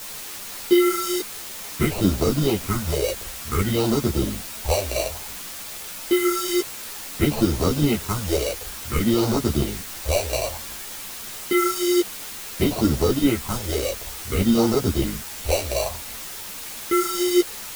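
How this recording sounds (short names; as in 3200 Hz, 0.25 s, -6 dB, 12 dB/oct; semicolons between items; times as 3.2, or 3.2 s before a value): aliases and images of a low sample rate 1700 Hz, jitter 0%; phasing stages 4, 0.56 Hz, lowest notch 180–2500 Hz; a quantiser's noise floor 6-bit, dither triangular; a shimmering, thickened sound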